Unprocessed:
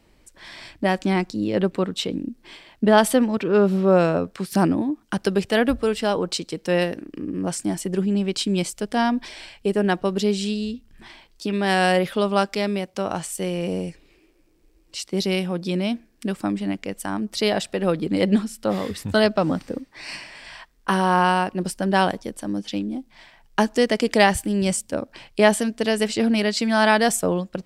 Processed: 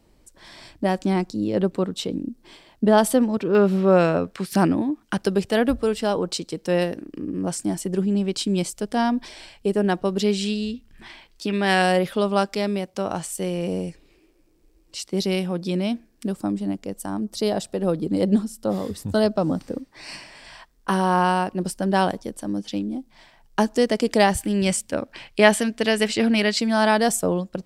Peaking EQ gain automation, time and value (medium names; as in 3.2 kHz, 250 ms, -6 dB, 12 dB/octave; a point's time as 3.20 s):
peaking EQ 2.2 kHz 1.6 oct
-7 dB
from 3.55 s +2 dB
from 5.22 s -4.5 dB
from 10.20 s +2.5 dB
from 11.82 s -3.5 dB
from 16.27 s -12.5 dB
from 19.61 s -5 dB
from 24.41 s +4 dB
from 26.60 s -5 dB